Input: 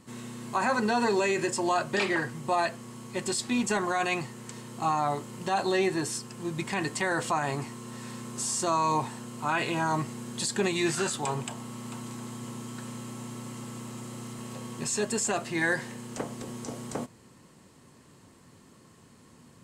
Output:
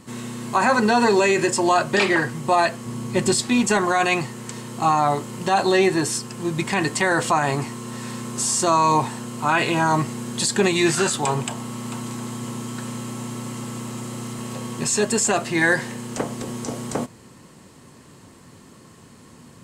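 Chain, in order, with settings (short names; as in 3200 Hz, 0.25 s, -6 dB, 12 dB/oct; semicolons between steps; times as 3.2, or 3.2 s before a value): 2.86–3.41 low shelf 320 Hz +8 dB; gain +8.5 dB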